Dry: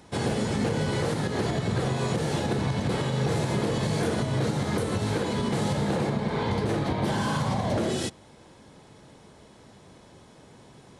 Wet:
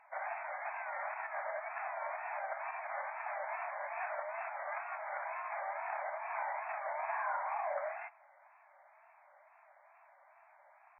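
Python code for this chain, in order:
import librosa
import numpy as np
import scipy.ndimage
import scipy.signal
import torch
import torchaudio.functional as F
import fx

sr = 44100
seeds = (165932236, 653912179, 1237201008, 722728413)

y = fx.brickwall_bandpass(x, sr, low_hz=590.0, high_hz=2500.0)
y = fx.wow_flutter(y, sr, seeds[0], rate_hz=2.1, depth_cents=130.0)
y = y * librosa.db_to_amplitude(-4.5)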